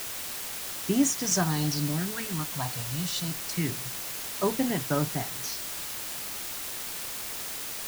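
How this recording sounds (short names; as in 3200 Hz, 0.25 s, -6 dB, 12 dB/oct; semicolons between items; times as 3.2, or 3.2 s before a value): phasing stages 4, 0.26 Hz, lowest notch 340–4200 Hz; a quantiser's noise floor 6-bit, dither triangular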